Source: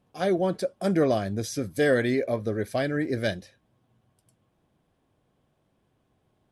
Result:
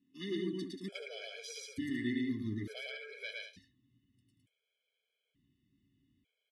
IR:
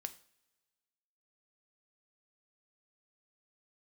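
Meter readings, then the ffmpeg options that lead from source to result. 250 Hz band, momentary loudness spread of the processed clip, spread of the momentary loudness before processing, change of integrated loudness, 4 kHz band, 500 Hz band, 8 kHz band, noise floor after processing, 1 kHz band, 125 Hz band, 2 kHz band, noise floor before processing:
−10.0 dB, 9 LU, 7 LU, −13.5 dB, −5.5 dB, −20.0 dB, −11.0 dB, below −85 dBFS, below −25 dB, −14.0 dB, −11.5 dB, −72 dBFS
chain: -filter_complex "[0:a]asubboost=boost=10.5:cutoff=92,asplit=3[link_01][link_02][link_03];[link_01]bandpass=frequency=270:width_type=q:width=8,volume=0dB[link_04];[link_02]bandpass=frequency=2290:width_type=q:width=8,volume=-6dB[link_05];[link_03]bandpass=frequency=3010:width_type=q:width=8,volume=-9dB[link_06];[link_04][link_05][link_06]amix=inputs=3:normalize=0,alimiter=level_in=11.5dB:limit=-24dB:level=0:latency=1:release=40,volume=-11.5dB,highshelf=frequency=3500:gain=11.5,asplit=2[link_07][link_08];[link_08]aecho=0:1:110.8|183.7:0.891|0.398[link_09];[link_07][link_09]amix=inputs=2:normalize=0,afftfilt=real='re*gt(sin(2*PI*0.56*pts/sr)*(1-2*mod(floor(b*sr/1024/430),2)),0)':imag='im*gt(sin(2*PI*0.56*pts/sr)*(1-2*mod(floor(b*sr/1024/430),2)),0)':win_size=1024:overlap=0.75,volume=5.5dB"

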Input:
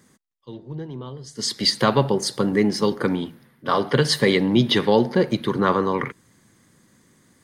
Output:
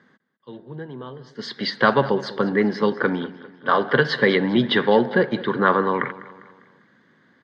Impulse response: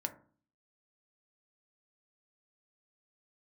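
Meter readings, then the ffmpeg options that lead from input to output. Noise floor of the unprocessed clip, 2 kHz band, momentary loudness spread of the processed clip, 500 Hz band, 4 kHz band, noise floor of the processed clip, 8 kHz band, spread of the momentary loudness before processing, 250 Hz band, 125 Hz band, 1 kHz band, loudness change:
−60 dBFS, +6.0 dB, 18 LU, +1.0 dB, −4.5 dB, −60 dBFS, below −20 dB, 16 LU, −1.0 dB, −4.0 dB, +2.5 dB, 0.0 dB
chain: -af "highpass=190,equalizer=frequency=320:width_type=q:width=4:gain=-4,equalizer=frequency=1600:width_type=q:width=4:gain=9,equalizer=frequency=2500:width_type=q:width=4:gain=-7,lowpass=frequency=3600:width=0.5412,lowpass=frequency=3600:width=1.3066,aecho=1:1:200|400|600|800:0.133|0.0627|0.0295|0.0138,volume=1.5dB"

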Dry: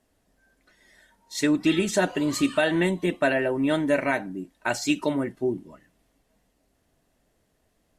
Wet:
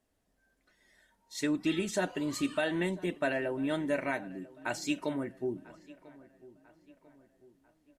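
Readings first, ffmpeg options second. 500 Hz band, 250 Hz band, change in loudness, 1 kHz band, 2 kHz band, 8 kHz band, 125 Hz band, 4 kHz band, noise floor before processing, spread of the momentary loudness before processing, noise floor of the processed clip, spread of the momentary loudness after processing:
−8.5 dB, −8.5 dB, −8.5 dB, −8.5 dB, −8.5 dB, −8.5 dB, −8.5 dB, −8.5 dB, −71 dBFS, 7 LU, −75 dBFS, 13 LU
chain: -filter_complex "[0:a]asplit=2[link_01][link_02];[link_02]adelay=995,lowpass=frequency=2500:poles=1,volume=-20.5dB,asplit=2[link_03][link_04];[link_04]adelay=995,lowpass=frequency=2500:poles=1,volume=0.49,asplit=2[link_05][link_06];[link_06]adelay=995,lowpass=frequency=2500:poles=1,volume=0.49,asplit=2[link_07][link_08];[link_08]adelay=995,lowpass=frequency=2500:poles=1,volume=0.49[link_09];[link_01][link_03][link_05][link_07][link_09]amix=inputs=5:normalize=0,volume=-8.5dB"

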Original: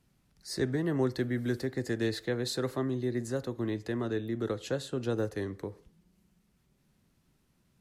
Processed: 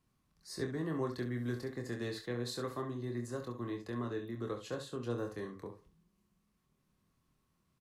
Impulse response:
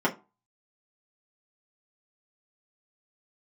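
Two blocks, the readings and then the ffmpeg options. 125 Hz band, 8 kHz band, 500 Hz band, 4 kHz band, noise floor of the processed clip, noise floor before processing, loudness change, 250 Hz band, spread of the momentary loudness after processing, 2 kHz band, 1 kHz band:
−6.0 dB, −7.0 dB, −7.0 dB, −7.0 dB, −78 dBFS, −71 dBFS, −7.0 dB, −7.0 dB, 8 LU, −6.5 dB, −2.0 dB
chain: -af "equalizer=frequency=1100:width=7.7:gain=13,aecho=1:1:25|67:0.531|0.355,volume=-8.5dB"

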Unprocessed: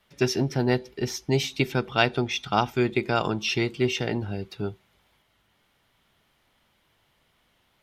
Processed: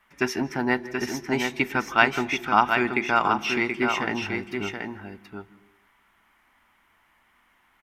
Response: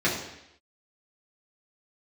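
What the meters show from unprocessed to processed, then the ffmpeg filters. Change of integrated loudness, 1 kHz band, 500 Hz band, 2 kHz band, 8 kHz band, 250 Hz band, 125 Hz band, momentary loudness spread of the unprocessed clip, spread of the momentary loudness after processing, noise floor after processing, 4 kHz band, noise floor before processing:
+1.5 dB, +6.0 dB, −2.0 dB, +6.5 dB, −2.0 dB, 0.0 dB, −9.0 dB, 8 LU, 15 LU, −64 dBFS, −2.5 dB, −68 dBFS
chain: -filter_complex "[0:a]equalizer=frequency=125:width_type=o:width=1:gain=-12,equalizer=frequency=250:width_type=o:width=1:gain=4,equalizer=frequency=500:width_type=o:width=1:gain=-8,equalizer=frequency=1000:width_type=o:width=1:gain=8,equalizer=frequency=2000:width_type=o:width=1:gain=8,equalizer=frequency=4000:width_type=o:width=1:gain=-10,aecho=1:1:729:0.531,asplit=2[link_01][link_02];[1:a]atrim=start_sample=2205,adelay=149[link_03];[link_02][link_03]afir=irnorm=-1:irlink=0,volume=-32.5dB[link_04];[link_01][link_04]amix=inputs=2:normalize=0"

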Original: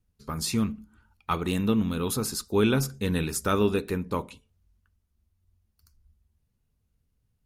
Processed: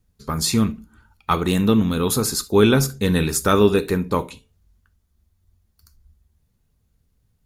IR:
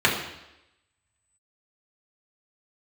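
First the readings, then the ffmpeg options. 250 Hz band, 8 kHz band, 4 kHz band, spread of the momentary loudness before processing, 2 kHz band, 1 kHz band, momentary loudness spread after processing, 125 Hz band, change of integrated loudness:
+7.5 dB, +8.5 dB, +8.5 dB, 9 LU, +7.5 dB, +8.0 dB, 9 LU, +7.5 dB, +8.0 dB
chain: -filter_complex "[0:a]asplit=2[link_01][link_02];[link_02]highshelf=frequency=4500:gain=8.5[link_03];[1:a]atrim=start_sample=2205,atrim=end_sample=3528,highshelf=frequency=4300:gain=11.5[link_04];[link_03][link_04]afir=irnorm=-1:irlink=0,volume=-32.5dB[link_05];[link_01][link_05]amix=inputs=2:normalize=0,volume=7.5dB"

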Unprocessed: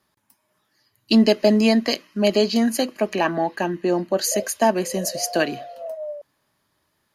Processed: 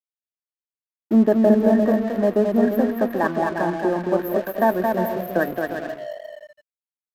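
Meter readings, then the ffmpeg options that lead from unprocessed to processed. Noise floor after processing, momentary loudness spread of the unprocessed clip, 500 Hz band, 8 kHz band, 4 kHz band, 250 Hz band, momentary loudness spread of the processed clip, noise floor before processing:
below −85 dBFS, 15 LU, +1.5 dB, below −20 dB, below −15 dB, +1.0 dB, 13 LU, −71 dBFS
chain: -af "aecho=1:1:220|352|431.2|478.7|507.2:0.631|0.398|0.251|0.158|0.1,afftfilt=real='re*(1-between(b*sr/4096,1900,12000))':imag='im*(1-between(b*sr/4096,1900,12000))':win_size=4096:overlap=0.75,aeval=exprs='sgn(val(0))*max(abs(val(0))-0.0133,0)':channel_layout=same"

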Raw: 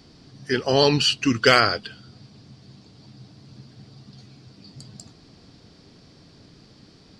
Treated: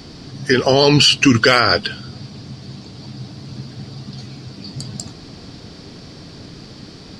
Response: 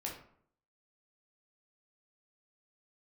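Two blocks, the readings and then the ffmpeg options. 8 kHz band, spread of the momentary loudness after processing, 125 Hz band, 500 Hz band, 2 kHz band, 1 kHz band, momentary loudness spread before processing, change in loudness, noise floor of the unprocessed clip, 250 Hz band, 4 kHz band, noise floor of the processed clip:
+9.0 dB, 22 LU, +9.0 dB, +5.5 dB, +6.0 dB, +4.5 dB, 10 LU, +6.0 dB, −52 dBFS, +8.0 dB, +7.0 dB, −39 dBFS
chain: -af "alimiter=level_in=14.5dB:limit=-1dB:release=50:level=0:latency=1,volume=-1dB"

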